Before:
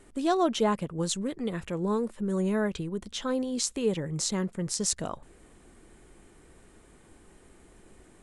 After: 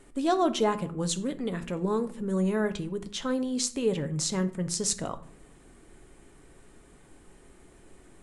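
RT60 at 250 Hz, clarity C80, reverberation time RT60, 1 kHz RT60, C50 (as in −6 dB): 1.0 s, 20.0 dB, 0.55 s, 0.50 s, 15.5 dB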